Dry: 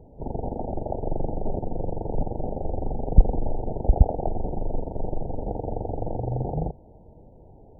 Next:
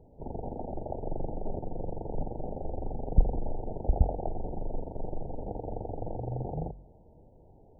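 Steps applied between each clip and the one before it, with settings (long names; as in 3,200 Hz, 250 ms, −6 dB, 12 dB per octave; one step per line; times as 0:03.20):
hum removal 45.74 Hz, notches 6
level −6.5 dB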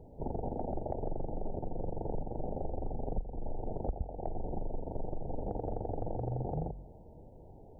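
downward compressor 12 to 1, threshold −34 dBFS, peak gain reduction 21 dB
level +3.5 dB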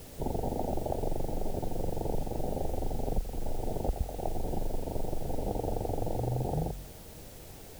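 background noise white −57 dBFS
level +4 dB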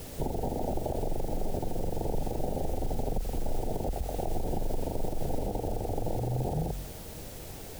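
brickwall limiter −26.5 dBFS, peak gain reduction 10 dB
level +5 dB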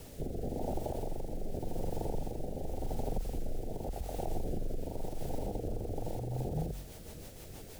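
rotating-speaker cabinet horn 0.9 Hz, later 6.3 Hz, at 0:05.79
level −3.5 dB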